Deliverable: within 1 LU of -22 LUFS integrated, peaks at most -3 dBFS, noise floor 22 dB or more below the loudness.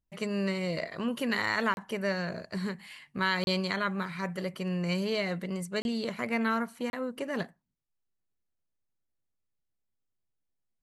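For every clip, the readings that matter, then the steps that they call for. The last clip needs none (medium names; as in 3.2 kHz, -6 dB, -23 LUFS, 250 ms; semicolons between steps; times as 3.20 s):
dropouts 4; longest dropout 31 ms; loudness -32.0 LUFS; peak level -15.0 dBFS; loudness target -22.0 LUFS
-> interpolate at 1.74/3.44/5.82/6.90 s, 31 ms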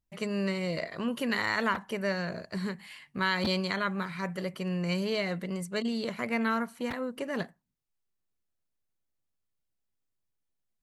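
dropouts 0; loudness -31.5 LUFS; peak level -15.0 dBFS; loudness target -22.0 LUFS
-> trim +9.5 dB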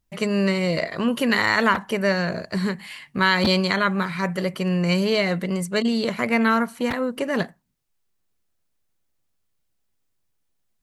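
loudness -22.0 LUFS; peak level -5.5 dBFS; noise floor -72 dBFS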